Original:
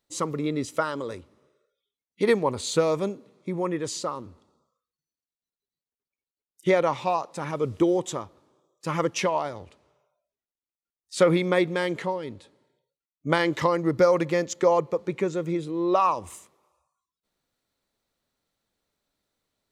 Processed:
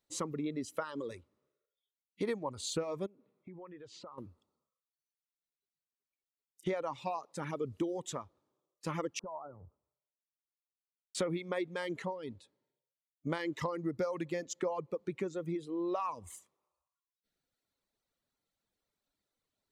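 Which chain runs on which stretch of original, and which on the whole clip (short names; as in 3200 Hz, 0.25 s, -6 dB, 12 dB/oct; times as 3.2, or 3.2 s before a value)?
3.06–4.18 LPF 2800 Hz + compressor 4:1, threshold -42 dBFS
9.19–11.15 steep low-pass 1400 Hz 96 dB/oct + compressor 4:1, threshold -36 dBFS + three-band expander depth 70%
whole clip: reverb removal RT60 1.1 s; dynamic EQ 260 Hz, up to +4 dB, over -37 dBFS, Q 1.1; compressor 3:1, threshold -29 dBFS; gain -5.5 dB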